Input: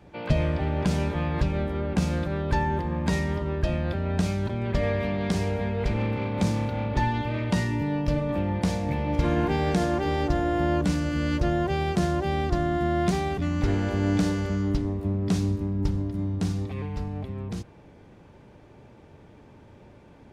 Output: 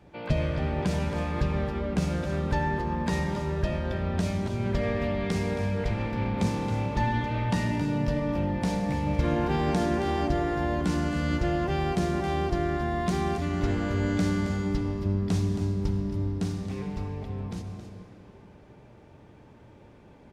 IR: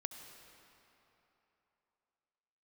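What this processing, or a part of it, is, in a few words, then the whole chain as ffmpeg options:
cave: -filter_complex "[0:a]aecho=1:1:271:0.299[link_01];[1:a]atrim=start_sample=2205[link_02];[link_01][link_02]afir=irnorm=-1:irlink=0"

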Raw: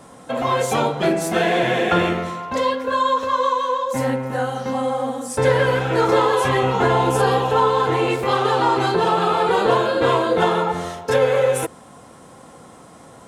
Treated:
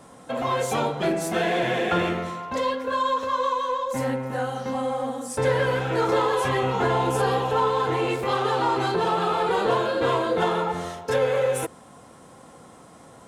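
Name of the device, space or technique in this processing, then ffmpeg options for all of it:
parallel distortion: -filter_complex "[0:a]asplit=2[link_01][link_02];[link_02]asoftclip=type=hard:threshold=-20.5dB,volume=-10dB[link_03];[link_01][link_03]amix=inputs=2:normalize=0,volume=-6.5dB"

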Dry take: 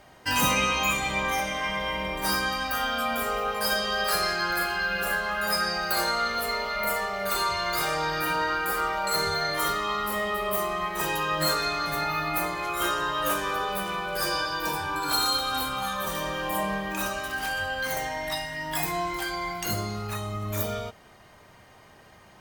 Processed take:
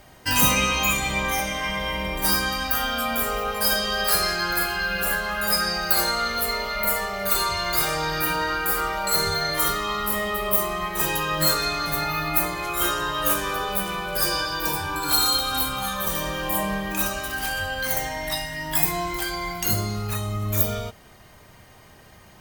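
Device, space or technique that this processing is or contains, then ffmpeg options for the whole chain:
smiley-face EQ: -af "lowshelf=frequency=100:gain=6,equalizer=frequency=930:width_type=o:width=2.5:gain=-3,highshelf=frequency=9700:gain=8.5,volume=3.5dB"

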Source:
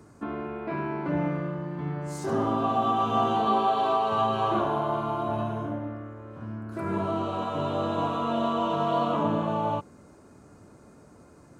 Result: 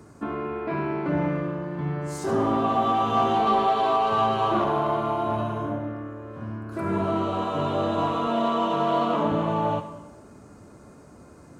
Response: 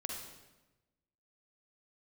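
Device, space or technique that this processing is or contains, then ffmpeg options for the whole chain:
saturated reverb return: -filter_complex "[0:a]asplit=2[link_01][link_02];[1:a]atrim=start_sample=2205[link_03];[link_02][link_03]afir=irnorm=-1:irlink=0,asoftclip=type=tanh:threshold=-24dB,volume=-3.5dB[link_04];[link_01][link_04]amix=inputs=2:normalize=0,asettb=1/sr,asplit=3[link_05][link_06][link_07];[link_05]atrim=end=8.274[link_08];[link_06]atrim=start=8.27:end=9.32,asetpts=PTS-STARTPTS,afade=type=in:duration=0.004:curve=qsin,afade=type=out:start_time=1.046:duration=0.004:curve=qsin,highpass=140[link_09];[link_07]atrim=start=9.316[link_10];[link_08][link_09]acrossfade=duration=0.004:curve1=hsin:curve2=qsin[link_11];[link_11][link_10]acrossfade=duration=0.004:curve1=qsin:curve2=hsin"

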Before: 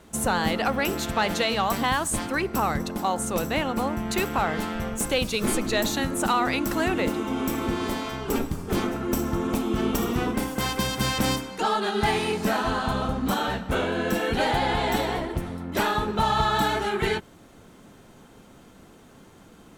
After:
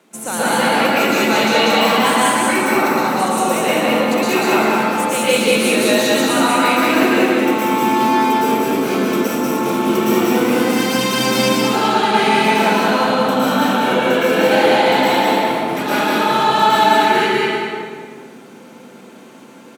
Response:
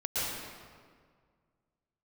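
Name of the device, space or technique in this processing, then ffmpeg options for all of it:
PA in a hall: -filter_complex "[0:a]highpass=frequency=190:width=0.5412,highpass=frequency=190:width=1.3066,equalizer=frequency=2400:width_type=o:width=0.26:gain=5.5,aecho=1:1:187:0.668,aecho=1:1:195:0.531[link_01];[1:a]atrim=start_sample=2205[link_02];[link_01][link_02]afir=irnorm=-1:irlink=0"

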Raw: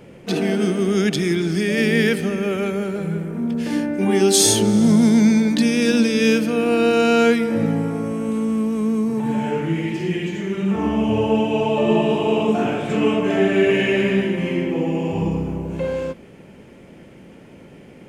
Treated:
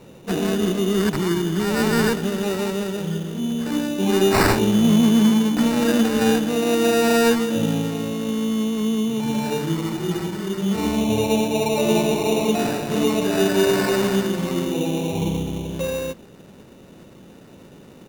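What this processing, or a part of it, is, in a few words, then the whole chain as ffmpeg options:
crushed at another speed: -af "asetrate=35280,aresample=44100,acrusher=samples=17:mix=1:aa=0.000001,asetrate=55125,aresample=44100,volume=-1.5dB"

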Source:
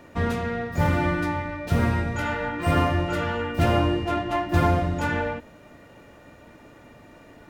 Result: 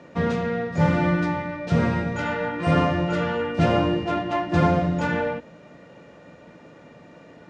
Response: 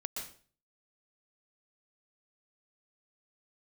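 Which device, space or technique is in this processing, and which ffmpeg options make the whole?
car door speaker: -af "highpass=91,equalizer=frequency=92:width_type=q:width=4:gain=-5,equalizer=frequency=170:width_type=q:width=4:gain=9,equalizer=frequency=510:width_type=q:width=4:gain=6,lowpass=frequency=6800:width=0.5412,lowpass=frequency=6800:width=1.3066"

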